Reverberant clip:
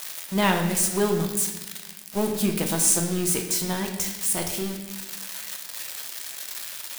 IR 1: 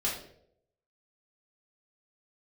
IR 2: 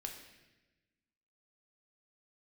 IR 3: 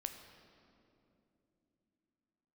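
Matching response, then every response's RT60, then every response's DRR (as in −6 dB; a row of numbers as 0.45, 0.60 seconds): 2; 0.70, 1.1, 2.9 seconds; −6.0, 2.0, 6.0 decibels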